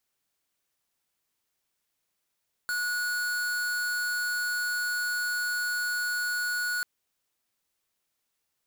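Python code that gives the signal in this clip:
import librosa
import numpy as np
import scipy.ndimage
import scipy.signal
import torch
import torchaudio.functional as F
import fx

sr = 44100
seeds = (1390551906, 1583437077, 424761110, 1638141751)

y = fx.tone(sr, length_s=4.14, wave='square', hz=1460.0, level_db=-29.5)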